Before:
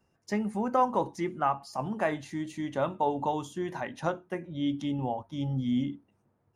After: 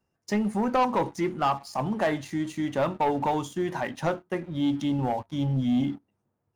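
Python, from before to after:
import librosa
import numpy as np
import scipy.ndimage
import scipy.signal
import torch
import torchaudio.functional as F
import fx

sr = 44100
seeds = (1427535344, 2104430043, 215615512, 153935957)

y = fx.leveller(x, sr, passes=2)
y = y * 10.0 ** (-2.0 / 20.0)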